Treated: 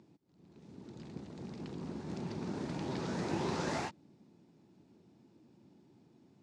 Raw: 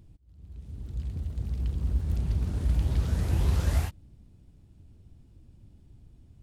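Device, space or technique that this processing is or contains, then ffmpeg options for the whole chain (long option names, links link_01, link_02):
television speaker: -af "highpass=frequency=180:width=0.5412,highpass=frequency=180:width=1.3066,equalizer=frequency=360:width_type=q:width=4:gain=5,equalizer=frequency=890:width_type=q:width=4:gain=6,equalizer=frequency=3100:width_type=q:width=4:gain=-5,lowpass=frequency=6700:width=0.5412,lowpass=frequency=6700:width=1.3066,volume=1dB"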